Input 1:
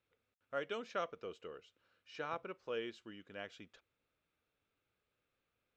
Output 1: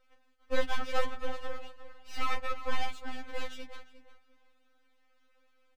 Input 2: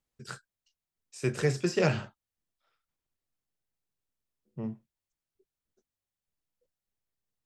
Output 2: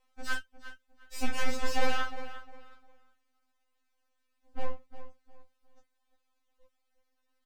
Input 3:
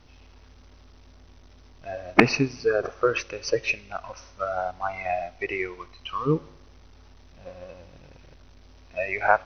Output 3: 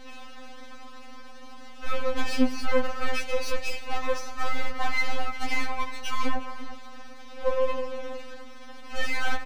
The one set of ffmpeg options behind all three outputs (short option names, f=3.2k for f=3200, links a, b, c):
-filter_complex "[0:a]acompressor=threshold=-31dB:ratio=2,afreqshift=-16,asplit=2[a][b];[b]highpass=f=720:p=1,volume=31dB,asoftclip=type=tanh:threshold=-10.5dB[c];[a][c]amix=inputs=2:normalize=0,lowpass=f=1.3k:p=1,volume=-6dB,asplit=2[d][e];[e]adelay=355,lowpass=f=2k:p=1,volume=-12dB,asplit=2[f][g];[g]adelay=355,lowpass=f=2k:p=1,volume=0.28,asplit=2[h][i];[i]adelay=355,lowpass=f=2k:p=1,volume=0.28[j];[d][f][h][j]amix=inputs=4:normalize=0,aeval=exprs='max(val(0),0)':c=same,afftfilt=real='re*3.46*eq(mod(b,12),0)':imag='im*3.46*eq(mod(b,12),0)':win_size=2048:overlap=0.75"